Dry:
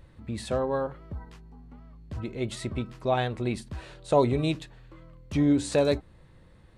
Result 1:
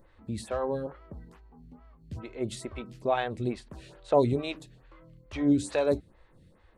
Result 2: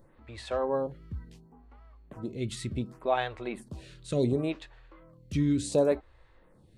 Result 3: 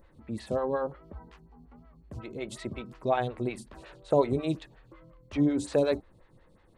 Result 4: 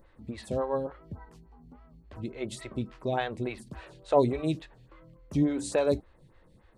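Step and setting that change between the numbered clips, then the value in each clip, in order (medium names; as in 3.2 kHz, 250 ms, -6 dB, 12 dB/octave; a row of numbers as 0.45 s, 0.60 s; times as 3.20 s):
lamp-driven phase shifter, rate: 2.3 Hz, 0.69 Hz, 5.5 Hz, 3.5 Hz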